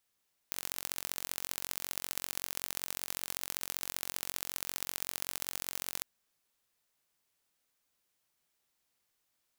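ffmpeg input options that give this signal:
ffmpeg -f lavfi -i "aevalsrc='0.447*eq(mod(n,974),0)*(0.5+0.5*eq(mod(n,2922),0))':duration=5.51:sample_rate=44100" out.wav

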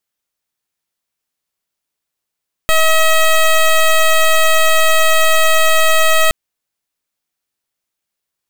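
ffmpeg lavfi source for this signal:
ffmpeg -f lavfi -i "aevalsrc='0.316*(2*lt(mod(639*t,1),0.12)-1)':duration=3.62:sample_rate=44100" out.wav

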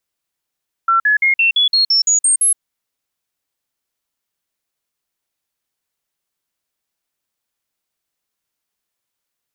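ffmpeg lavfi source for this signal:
ffmpeg -f lavfi -i "aevalsrc='0.316*clip(min(mod(t,0.17),0.12-mod(t,0.17))/0.005,0,1)*sin(2*PI*1350*pow(2,floor(t/0.17)/3)*mod(t,0.17))':duration=1.7:sample_rate=44100" out.wav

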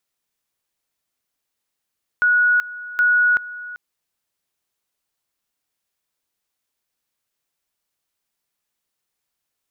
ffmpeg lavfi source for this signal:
ffmpeg -f lavfi -i "aevalsrc='pow(10,(-12.5-17.5*gte(mod(t,0.77),0.38))/20)*sin(2*PI*1460*t)':duration=1.54:sample_rate=44100" out.wav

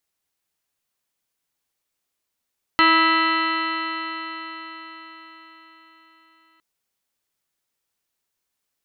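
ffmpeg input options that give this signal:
ffmpeg -f lavfi -i "aevalsrc='0.0891*pow(10,-3*t/4.95)*sin(2*PI*323.18*t)+0.02*pow(10,-3*t/4.95)*sin(2*PI*647.42*t)+0.0891*pow(10,-3*t/4.95)*sin(2*PI*973.78*t)+0.168*pow(10,-3*t/4.95)*sin(2*PI*1303.32*t)+0.0398*pow(10,-3*t/4.95)*sin(2*PI*1637.06*t)+0.133*pow(10,-3*t/4.95)*sin(2*PI*1976*t)+0.0188*pow(10,-3*t/4.95)*sin(2*PI*2321.13*t)+0.0596*pow(10,-3*t/4.95)*sin(2*PI*2673.41*t)+0.0668*pow(10,-3*t/4.95)*sin(2*PI*3033.74*t)+0.0106*pow(10,-3*t/4.95)*sin(2*PI*3403.02*t)+0.0126*pow(10,-3*t/4.95)*sin(2*PI*3782.07*t)+0.0562*pow(10,-3*t/4.95)*sin(2*PI*4171.7*t)':duration=3.81:sample_rate=44100" out.wav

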